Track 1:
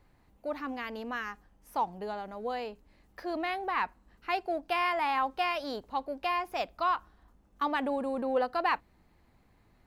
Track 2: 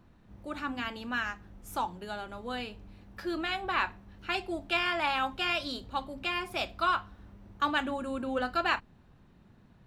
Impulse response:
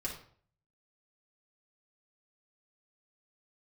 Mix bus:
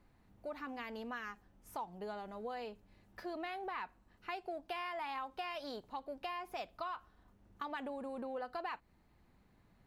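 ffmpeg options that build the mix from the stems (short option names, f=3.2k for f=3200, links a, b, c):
-filter_complex "[0:a]acompressor=threshold=-31dB:ratio=2.5,volume=-5.5dB,asplit=2[a][b];[1:a]volume=-12.5dB[c];[b]apad=whole_len=434967[d];[c][d]sidechaincompress=threshold=-43dB:ratio=8:attack=16:release=842[e];[a][e]amix=inputs=2:normalize=0,acompressor=threshold=-40dB:ratio=2"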